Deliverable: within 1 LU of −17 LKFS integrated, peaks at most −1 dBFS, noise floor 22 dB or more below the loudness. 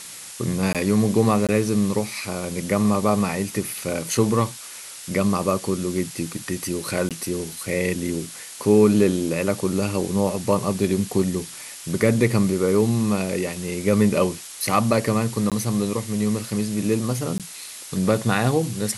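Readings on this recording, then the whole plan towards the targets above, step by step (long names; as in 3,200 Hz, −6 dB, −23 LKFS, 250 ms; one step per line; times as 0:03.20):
number of dropouts 5; longest dropout 17 ms; background noise floor −38 dBFS; target noise floor −45 dBFS; integrated loudness −22.5 LKFS; sample peak −4.5 dBFS; target loudness −17.0 LKFS
→ repair the gap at 0:00.73/0:01.47/0:07.09/0:15.50/0:17.38, 17 ms
noise reduction from a noise print 7 dB
level +5.5 dB
brickwall limiter −1 dBFS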